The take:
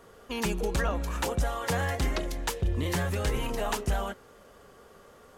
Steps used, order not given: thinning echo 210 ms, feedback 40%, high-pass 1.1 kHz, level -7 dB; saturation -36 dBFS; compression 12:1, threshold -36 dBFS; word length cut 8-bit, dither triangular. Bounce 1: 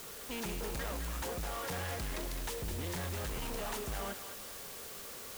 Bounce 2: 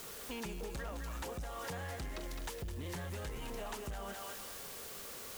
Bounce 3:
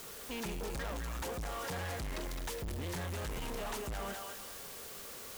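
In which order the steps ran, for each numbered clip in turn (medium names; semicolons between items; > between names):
saturation > compression > word length cut > thinning echo; word length cut > thinning echo > compression > saturation; word length cut > thinning echo > saturation > compression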